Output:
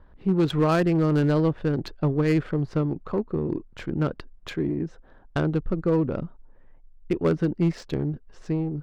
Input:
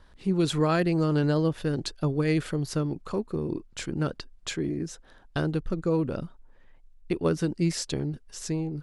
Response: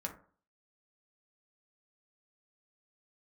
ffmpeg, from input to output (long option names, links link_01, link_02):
-af "adynamicsmooth=sensitivity=2:basefreq=1500,asoftclip=type=hard:threshold=-18.5dB,volume=3.5dB"